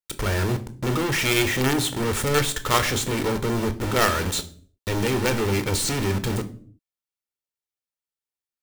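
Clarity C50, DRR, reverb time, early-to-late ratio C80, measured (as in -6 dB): 15.5 dB, 9.0 dB, 0.50 s, 20.5 dB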